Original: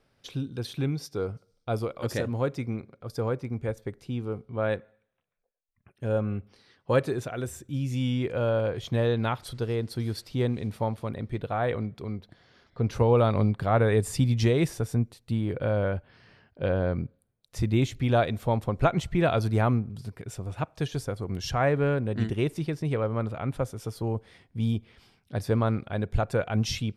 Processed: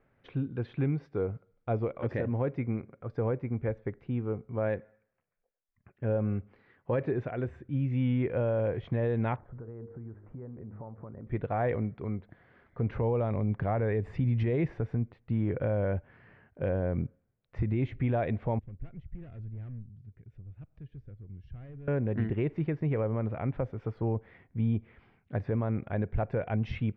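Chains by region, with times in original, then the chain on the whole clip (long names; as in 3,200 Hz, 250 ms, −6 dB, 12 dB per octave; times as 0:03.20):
0:09.36–0:11.27: hum removal 51.49 Hz, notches 10 + downward compressor 10 to 1, threshold −39 dBFS + low-pass filter 1,400 Hz 24 dB per octave
0:18.59–0:21.88: hard clipping −24 dBFS + guitar amp tone stack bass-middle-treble 10-0-1 + upward compression, threshold −46 dBFS
whole clip: Chebyshev low-pass filter 2,100 Hz, order 3; dynamic equaliser 1,300 Hz, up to −7 dB, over −47 dBFS, Q 2.5; brickwall limiter −20.5 dBFS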